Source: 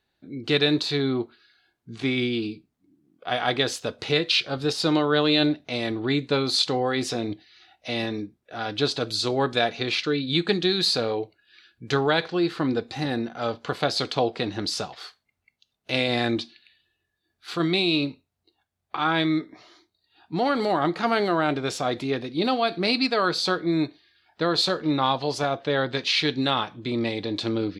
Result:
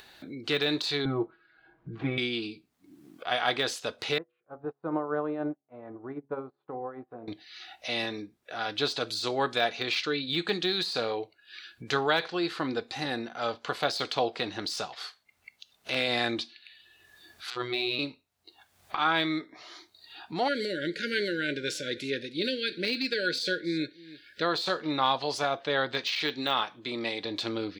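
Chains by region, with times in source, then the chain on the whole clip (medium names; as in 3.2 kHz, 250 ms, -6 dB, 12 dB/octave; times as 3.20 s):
1.05–2.18 s: low-pass 1.4 kHz + tilt EQ -2 dB/octave + comb 6.2 ms, depth 97%
4.18–7.28 s: low-pass 1.2 kHz 24 dB/octave + de-hum 69.89 Hz, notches 12 + upward expansion 2.5:1, over -40 dBFS
17.50–17.99 s: robot voice 123 Hz + distance through air 98 m
20.48–24.42 s: brick-wall FIR band-stop 600–1400 Hz + delay 312 ms -22.5 dB
26.15–27.25 s: high-pass 190 Hz 6 dB/octave + de-esser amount 70%
whole clip: de-esser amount 70%; bass shelf 400 Hz -12 dB; upward compressor, threshold -35 dBFS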